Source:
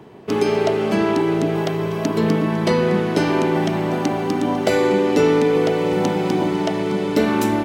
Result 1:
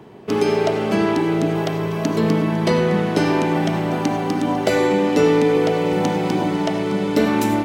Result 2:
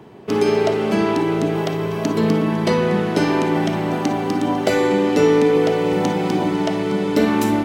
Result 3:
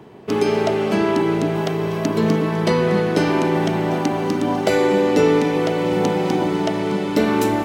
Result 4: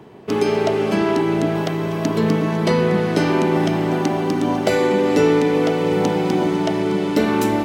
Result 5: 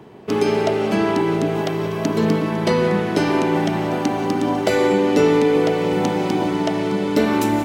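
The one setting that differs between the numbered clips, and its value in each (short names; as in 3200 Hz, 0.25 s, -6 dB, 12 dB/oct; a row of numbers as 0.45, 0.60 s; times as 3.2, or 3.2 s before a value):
non-linear reverb, gate: 120, 80, 320, 530, 210 ms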